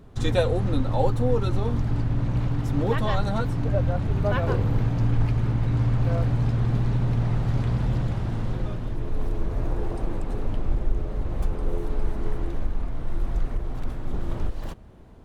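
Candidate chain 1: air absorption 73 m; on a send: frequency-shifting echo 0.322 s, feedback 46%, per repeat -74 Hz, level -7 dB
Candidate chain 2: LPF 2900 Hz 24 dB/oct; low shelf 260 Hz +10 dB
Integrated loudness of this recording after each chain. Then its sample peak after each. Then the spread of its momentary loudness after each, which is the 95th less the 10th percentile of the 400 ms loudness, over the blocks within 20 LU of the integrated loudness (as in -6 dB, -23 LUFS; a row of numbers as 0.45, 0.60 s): -25.5, -19.0 LUFS; -8.5, -1.0 dBFS; 7, 9 LU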